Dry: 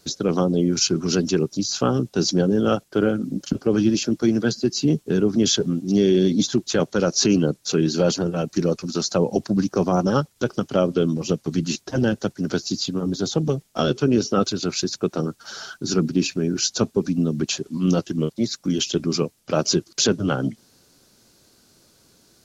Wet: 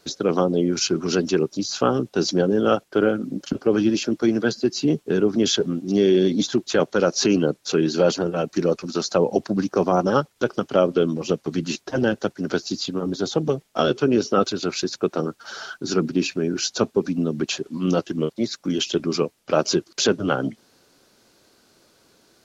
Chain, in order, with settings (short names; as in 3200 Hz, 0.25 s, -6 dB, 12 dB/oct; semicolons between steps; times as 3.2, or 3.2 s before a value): tone controls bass -9 dB, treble -8 dB; gain +3 dB